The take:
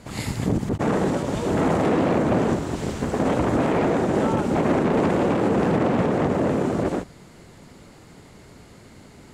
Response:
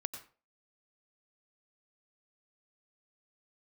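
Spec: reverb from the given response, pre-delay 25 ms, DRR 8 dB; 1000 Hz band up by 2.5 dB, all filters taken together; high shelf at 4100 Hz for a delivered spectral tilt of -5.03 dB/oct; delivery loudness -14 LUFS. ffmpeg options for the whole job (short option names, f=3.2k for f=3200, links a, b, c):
-filter_complex "[0:a]equalizer=f=1k:t=o:g=3.5,highshelf=f=4.1k:g=-4.5,asplit=2[a][b];[1:a]atrim=start_sample=2205,adelay=25[c];[b][c]afir=irnorm=-1:irlink=0,volume=-7.5dB[d];[a][d]amix=inputs=2:normalize=0,volume=7dB"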